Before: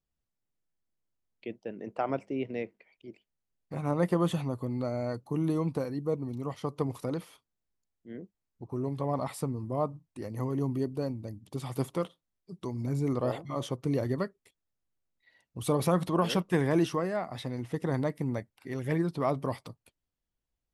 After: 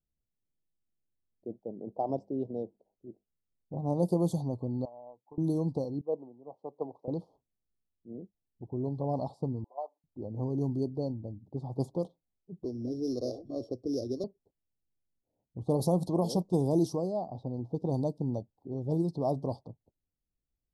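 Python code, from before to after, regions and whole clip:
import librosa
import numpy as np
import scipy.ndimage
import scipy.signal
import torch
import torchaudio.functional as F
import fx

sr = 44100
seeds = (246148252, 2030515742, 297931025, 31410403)

y = fx.chain(x, sr, fx.bandpass_q(hz=970.0, q=4.7),
    fx.transient(attack_db=7, sustain_db=-4), at=(4.85, 5.38))
y = fx.chain(y, sr, fx.bandpass_edges(low_hz=700.0, high_hz=6100.0),
    fx.tilt_shelf(db=7.5, hz=1100.0),
    fx.band_widen(depth_pct=100), at=(6.01, 7.08))
y = fx.chain(y, sr, fx.level_steps(step_db=10),
    fx.cheby2_highpass(hz=160.0, order=4, stop_db=70),
    fx.comb(ms=7.0, depth=0.9), at=(9.64, 10.04))
y = fx.chain(y, sr, fx.sample_sort(block=8),
    fx.fixed_phaser(hz=370.0, stages=4),
    fx.band_squash(depth_pct=70), at=(12.64, 14.24))
y = fx.env_lowpass(y, sr, base_hz=490.0, full_db=-23.5)
y = scipy.signal.sosfilt(scipy.signal.ellip(3, 1.0, 50, [830.0, 4400.0], 'bandstop', fs=sr, output='sos'), y)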